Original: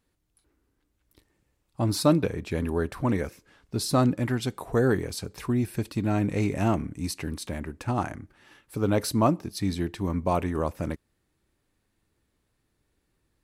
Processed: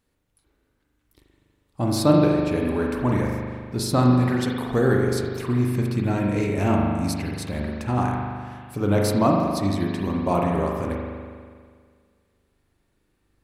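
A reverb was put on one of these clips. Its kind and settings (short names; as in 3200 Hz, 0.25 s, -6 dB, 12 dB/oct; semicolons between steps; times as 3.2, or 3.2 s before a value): spring tank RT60 1.9 s, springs 40 ms, chirp 45 ms, DRR -1 dB; gain +1 dB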